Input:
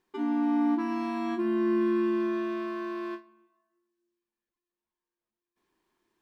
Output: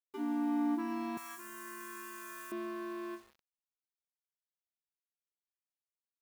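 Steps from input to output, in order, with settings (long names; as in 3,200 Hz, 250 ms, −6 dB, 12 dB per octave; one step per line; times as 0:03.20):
bit reduction 9 bits
0:01.17–0:02.52: drawn EQ curve 130 Hz 0 dB, 230 Hz −25 dB, 710 Hz −13 dB, 1,300 Hz +2 dB, 4,000 Hz −3 dB, 6,700 Hz +14 dB
level −6.5 dB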